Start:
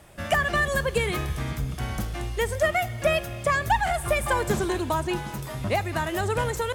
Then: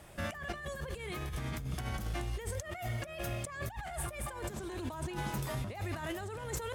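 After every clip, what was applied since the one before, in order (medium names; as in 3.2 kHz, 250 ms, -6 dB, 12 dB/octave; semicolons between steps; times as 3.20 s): compressor with a negative ratio -32 dBFS, ratio -1; trim -7.5 dB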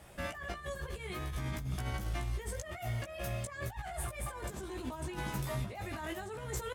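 doubling 16 ms -3.5 dB; trim -2.5 dB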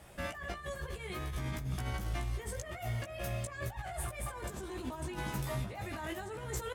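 bucket-brigade echo 237 ms, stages 4096, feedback 53%, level -17 dB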